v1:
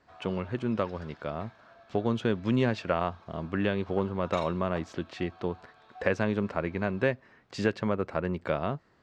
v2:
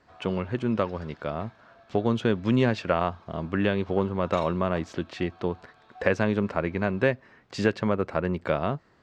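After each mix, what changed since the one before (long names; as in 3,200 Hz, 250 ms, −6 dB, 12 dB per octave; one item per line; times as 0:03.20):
speech +3.5 dB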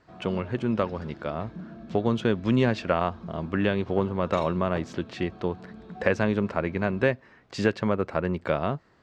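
background: remove high-pass filter 710 Hz 24 dB per octave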